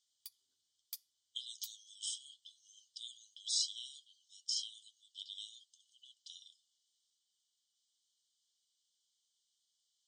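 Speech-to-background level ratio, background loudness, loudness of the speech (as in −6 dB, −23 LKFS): 10.5 dB, −51.5 LKFS, −41.0 LKFS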